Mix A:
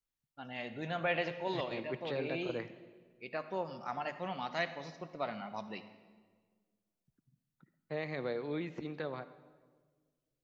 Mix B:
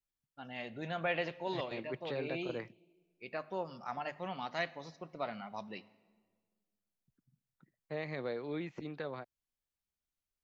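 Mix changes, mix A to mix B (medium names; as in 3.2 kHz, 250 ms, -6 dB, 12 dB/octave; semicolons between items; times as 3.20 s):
first voice: send -9.5 dB; second voice: send off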